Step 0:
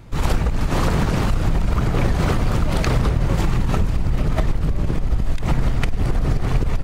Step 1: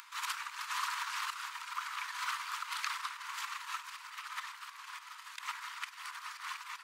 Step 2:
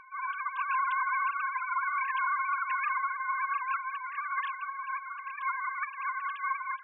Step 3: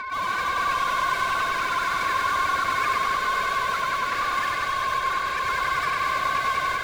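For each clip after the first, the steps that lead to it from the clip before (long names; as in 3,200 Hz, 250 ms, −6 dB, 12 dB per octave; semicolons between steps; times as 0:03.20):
brickwall limiter −13 dBFS, peak gain reduction 9.5 dB; upward compression, threshold −29 dBFS; Chebyshev high-pass filter 980 Hz, order 6; level −4 dB
three sine waves on the formant tracks; automatic gain control gain up to 8 dB; brickwall limiter −25.5 dBFS, peak gain reduction 11.5 dB; level +3.5 dB
in parallel at −11 dB: wrap-around overflow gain 38 dB; on the sum: mid-hump overdrive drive 29 dB, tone 3,100 Hz, clips at −21.5 dBFS; feedback echo at a low word length 96 ms, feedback 80%, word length 10 bits, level −4.5 dB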